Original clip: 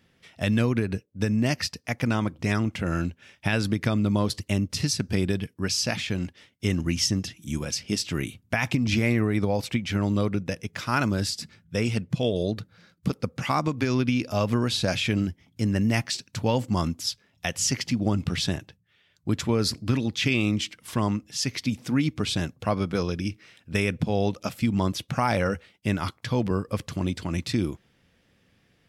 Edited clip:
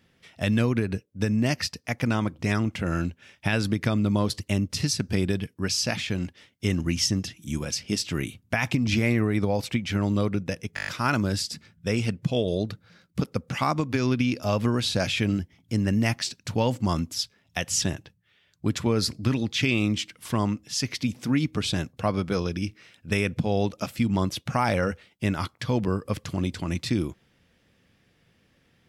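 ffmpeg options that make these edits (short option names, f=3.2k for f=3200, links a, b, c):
-filter_complex "[0:a]asplit=8[a][b][c][d][e][f][g][h];[a]atrim=end=10.772[i];[b]atrim=start=10.748:end=10.772[j];[c]atrim=start=10.748:end=10.772[k];[d]atrim=start=10.748:end=10.772[l];[e]atrim=start=10.748:end=10.772[m];[f]atrim=start=10.748:end=10.772[n];[g]atrim=start=10.748:end=17.702[o];[h]atrim=start=18.448[p];[i][j]acrossfade=d=0.004:c1=hsin:c2=hsin[q];[q][k]acrossfade=d=0.004:c1=hsin:c2=hsin[r];[r][l]acrossfade=d=0.004:c1=hsin:c2=hsin[s];[s][m]acrossfade=d=0.004:c1=hsin:c2=hsin[t];[t][n]acrossfade=d=0.004:c1=hsin:c2=hsin[u];[u][o]acrossfade=d=0.004:c1=hsin:c2=hsin[v];[v][p]acrossfade=d=0.004:c1=hsin:c2=hsin"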